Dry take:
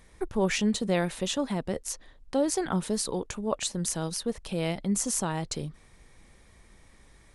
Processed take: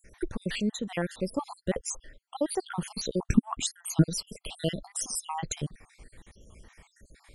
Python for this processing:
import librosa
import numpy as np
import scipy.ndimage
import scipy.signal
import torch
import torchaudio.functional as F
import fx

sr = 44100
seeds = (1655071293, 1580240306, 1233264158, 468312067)

y = fx.spec_dropout(x, sr, seeds[0], share_pct=64)
y = fx.rider(y, sr, range_db=4, speed_s=0.5)
y = fx.low_shelf_res(y, sr, hz=390.0, db=12.5, q=3.0, at=(3.24, 4.01), fade=0.02)
y = y * librosa.db_to_amplitude(1.5)